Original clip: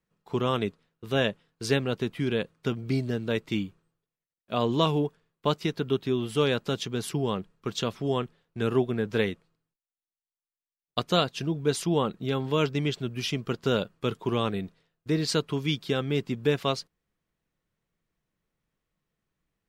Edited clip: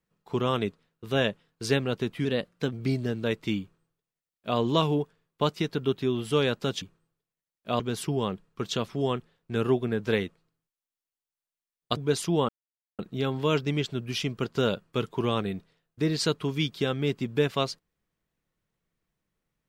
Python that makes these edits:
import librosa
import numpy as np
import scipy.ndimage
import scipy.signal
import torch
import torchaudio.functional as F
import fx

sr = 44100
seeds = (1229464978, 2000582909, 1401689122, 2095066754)

y = fx.edit(x, sr, fx.speed_span(start_s=2.25, length_s=0.52, speed=1.09),
    fx.duplicate(start_s=3.65, length_s=0.98, to_s=6.86),
    fx.cut(start_s=11.03, length_s=0.52),
    fx.insert_silence(at_s=12.07, length_s=0.5), tone=tone)